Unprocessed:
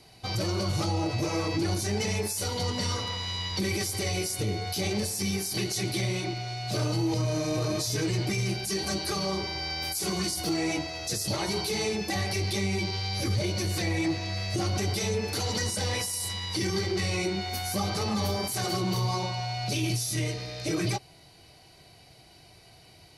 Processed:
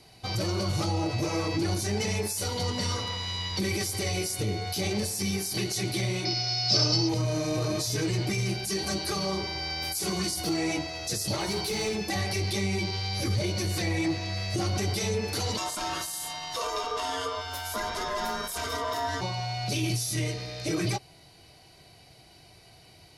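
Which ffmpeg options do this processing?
-filter_complex "[0:a]asettb=1/sr,asplit=3[a][b][c];[a]atrim=end=6.254[d];[b]atrim=start=6.25:end=7.09,asetpts=PTS-STARTPTS,afade=t=in:d=0.004:c=qsin,afade=t=out:st=0.836:d=0.004:c=qsin,lowpass=f=5.2k:t=q:w=16[e];[c]atrim=start=7.086[f];[d][e]acrossfade=d=0.004:c1=hsin:c2=qsin[g];[g][f]acrossfade=d=0.004:c1=qsin:c2=hsin,asettb=1/sr,asplit=3[h][i][j];[h]atrim=end=11.404[k];[i]atrim=start=11.4:end=12.1,asetpts=PTS-STARTPTS,afade=t=in:d=0.004:c=qsin,afade=t=out:st=0.696:d=0.004:c=qsin,aeval=exprs='clip(val(0),-1,0.0473)':c=same[l];[j]atrim=start=12.096[m];[k][l]acrossfade=d=0.004:c1=hsin:c2=qsin[n];[n][m]acrossfade=d=0.004:c1=qsin:c2=hsin,asplit=3[o][p][q];[o]afade=t=out:st=15.56:d=0.02[r];[p]aeval=exprs='val(0)*sin(2*PI*820*n/s)':c=same,afade=t=in:st=15.56:d=0.02,afade=t=out:st=19.2:d=0.02[s];[q]afade=t=in:st=19.2:d=0.02[t];[r][s][t]amix=inputs=3:normalize=0"

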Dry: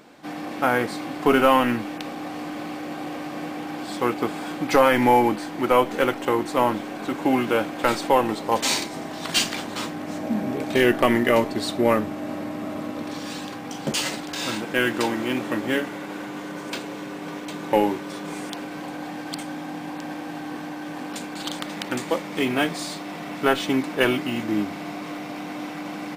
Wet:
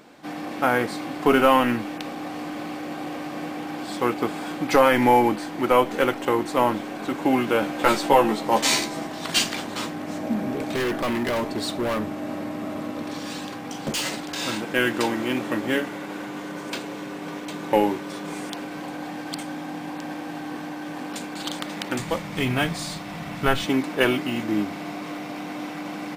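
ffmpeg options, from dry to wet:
-filter_complex "[0:a]asettb=1/sr,asplit=3[a][b][c];[a]atrim=end=7.614[d];[b]atrim=start=7.61:end=9.07,asetpts=PTS-STARTPTS,afade=t=in:d=0.004:c=qsin,afade=t=out:st=1.456:d=0.004:c=qsin,asplit=2[e][f];[f]adelay=14,volume=-2dB[g];[e][g]amix=inputs=2:normalize=0,atrim=end_sample=64386[h];[c]atrim=start=9.066[i];[d][h]acrossfade=d=0.004:c1=hsin:c2=qsin[j];[j][i]acrossfade=d=0.004:c1=qsin:c2=hsin,asettb=1/sr,asplit=3[k][l][m];[k]atrim=end=10.354[n];[l]atrim=start=10.35:end=14.23,asetpts=PTS-STARTPTS,afade=t=in:d=0.004:c=qsin,afade=t=out:st=3.876:d=0.004:c=qsin,volume=22dB,asoftclip=hard,volume=-22dB[o];[m]atrim=start=14.226[p];[n][o]acrossfade=d=0.004:c1=hsin:c2=qsin[q];[q][p]acrossfade=d=0.004:c1=qsin:c2=hsin,asplit=3[r][s][t];[r]afade=t=out:st=21.98:d=0.02[u];[s]asubboost=boost=8:cutoff=110,afade=t=in:st=21.98:d=0.02,afade=t=out:st=23.66:d=0.02[v];[t]afade=t=in:st=23.66:d=0.02[w];[u][v][w]amix=inputs=3:normalize=0"

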